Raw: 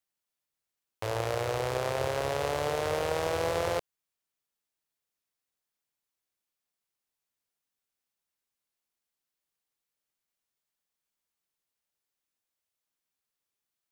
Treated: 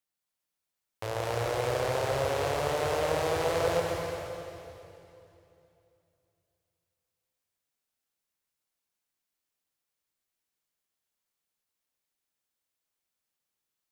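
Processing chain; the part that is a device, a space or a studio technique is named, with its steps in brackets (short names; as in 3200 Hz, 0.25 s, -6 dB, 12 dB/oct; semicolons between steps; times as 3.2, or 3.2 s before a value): stairwell (reverb RT60 2.9 s, pre-delay 0.102 s, DRR -0.5 dB); gain -2 dB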